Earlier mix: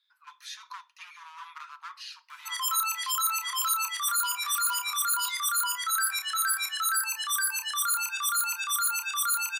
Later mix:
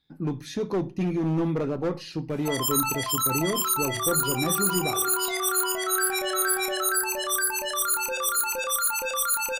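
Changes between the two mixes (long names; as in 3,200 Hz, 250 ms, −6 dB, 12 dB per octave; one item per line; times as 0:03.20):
second sound +9.5 dB
master: remove Chebyshev high-pass with heavy ripple 960 Hz, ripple 3 dB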